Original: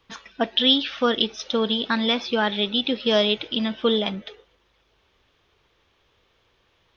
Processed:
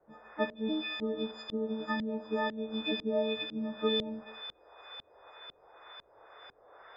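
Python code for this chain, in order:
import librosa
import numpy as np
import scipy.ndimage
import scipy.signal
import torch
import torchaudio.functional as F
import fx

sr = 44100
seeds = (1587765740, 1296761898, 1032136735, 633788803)

p1 = fx.freq_snap(x, sr, grid_st=6)
p2 = p1 + fx.echo_wet_highpass(p1, sr, ms=491, feedback_pct=72, hz=4800.0, wet_db=-4.5, dry=0)
p3 = fx.rev_schroeder(p2, sr, rt60_s=0.5, comb_ms=31, drr_db=11.0)
p4 = fx.dmg_noise_band(p3, sr, seeds[0], low_hz=430.0, high_hz=1800.0, level_db=-45.0)
p5 = fx.peak_eq(p4, sr, hz=3100.0, db=-8.5, octaves=1.9, at=(1.31, 2.58))
p6 = fx.filter_lfo_lowpass(p5, sr, shape='saw_up', hz=2.0, low_hz=260.0, high_hz=3700.0, q=0.83)
p7 = fx.dynamic_eq(p6, sr, hz=1500.0, q=1.3, threshold_db=-37.0, ratio=4.0, max_db=-5)
y = p7 * librosa.db_to_amplitude(-8.5)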